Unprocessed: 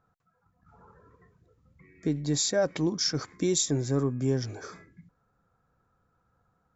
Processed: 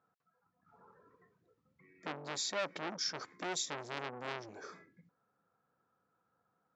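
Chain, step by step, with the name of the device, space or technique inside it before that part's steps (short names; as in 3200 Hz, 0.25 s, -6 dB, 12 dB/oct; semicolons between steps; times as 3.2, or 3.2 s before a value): public-address speaker with an overloaded transformer (core saturation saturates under 3100 Hz; BPF 210–5300 Hz); gain -5.5 dB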